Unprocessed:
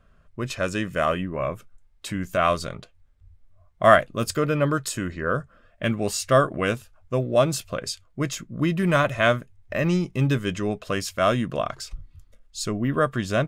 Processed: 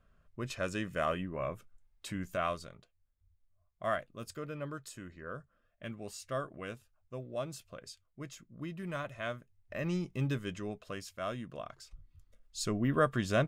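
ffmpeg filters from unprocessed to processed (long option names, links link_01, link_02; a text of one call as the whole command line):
ffmpeg -i in.wav -af "volume=9.5dB,afade=type=out:start_time=2.21:duration=0.51:silence=0.354813,afade=type=in:start_time=9.36:duration=0.74:silence=0.398107,afade=type=out:start_time=10.1:duration=1.02:silence=0.473151,afade=type=in:start_time=11.91:duration=0.81:silence=0.281838" out.wav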